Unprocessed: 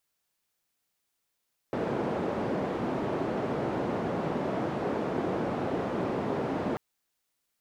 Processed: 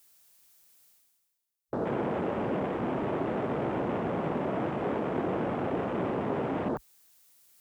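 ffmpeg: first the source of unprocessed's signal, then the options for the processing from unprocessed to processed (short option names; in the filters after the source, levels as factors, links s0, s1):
-f lavfi -i "anoisesrc=c=white:d=5.04:r=44100:seed=1,highpass=f=150,lowpass=f=520,volume=-8.5dB"
-af "afwtdn=0.00891,highshelf=f=5200:g=11.5,areverse,acompressor=mode=upward:threshold=0.01:ratio=2.5,areverse"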